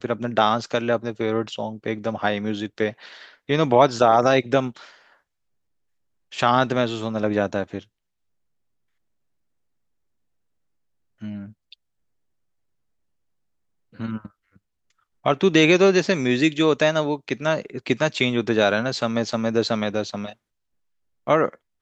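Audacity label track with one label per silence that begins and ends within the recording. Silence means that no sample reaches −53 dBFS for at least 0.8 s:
5.170000	6.320000	silence
7.860000	11.210000	silence
11.740000	13.930000	silence
20.340000	21.270000	silence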